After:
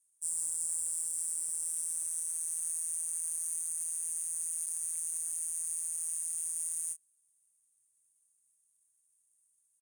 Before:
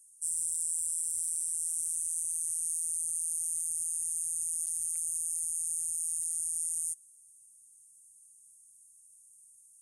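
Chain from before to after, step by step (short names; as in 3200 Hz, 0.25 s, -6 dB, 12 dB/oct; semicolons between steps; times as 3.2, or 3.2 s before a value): power-law curve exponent 1.4; doubler 28 ms -8.5 dB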